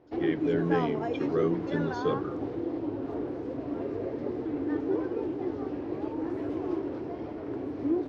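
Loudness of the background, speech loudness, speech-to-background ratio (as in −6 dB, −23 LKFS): −32.5 LKFS, −31.5 LKFS, 1.0 dB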